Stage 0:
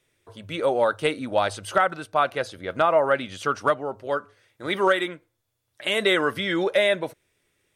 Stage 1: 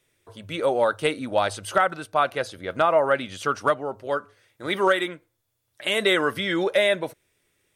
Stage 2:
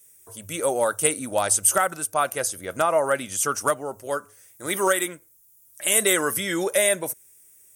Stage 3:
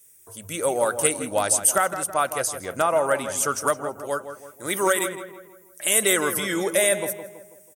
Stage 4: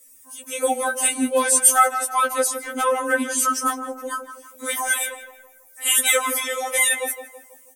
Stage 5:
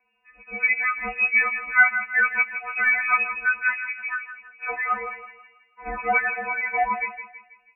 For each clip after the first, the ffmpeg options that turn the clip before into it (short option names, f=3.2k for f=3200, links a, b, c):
-af "highshelf=f=9.1k:g=5"
-af "aexciter=amount=13.2:drive=4.5:freq=6k,volume=-1.5dB"
-filter_complex "[0:a]asplit=2[a][b];[b]adelay=163,lowpass=f=2.2k:p=1,volume=-9.5dB,asplit=2[c][d];[d]adelay=163,lowpass=f=2.2k:p=1,volume=0.47,asplit=2[e][f];[f]adelay=163,lowpass=f=2.2k:p=1,volume=0.47,asplit=2[g][h];[h]adelay=163,lowpass=f=2.2k:p=1,volume=0.47,asplit=2[i][j];[j]adelay=163,lowpass=f=2.2k:p=1,volume=0.47[k];[a][c][e][g][i][k]amix=inputs=6:normalize=0"
-af "afftfilt=real='re*3.46*eq(mod(b,12),0)':imag='im*3.46*eq(mod(b,12),0)':win_size=2048:overlap=0.75,volume=5.5dB"
-af "lowpass=f=2.4k:t=q:w=0.5098,lowpass=f=2.4k:t=q:w=0.6013,lowpass=f=2.4k:t=q:w=0.9,lowpass=f=2.4k:t=q:w=2.563,afreqshift=-2800"